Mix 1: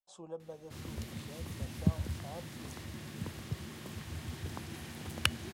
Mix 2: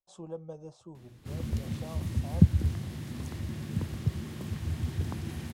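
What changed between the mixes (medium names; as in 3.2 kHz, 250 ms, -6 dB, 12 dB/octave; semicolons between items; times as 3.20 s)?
background: entry +0.55 s; master: add bass shelf 300 Hz +11.5 dB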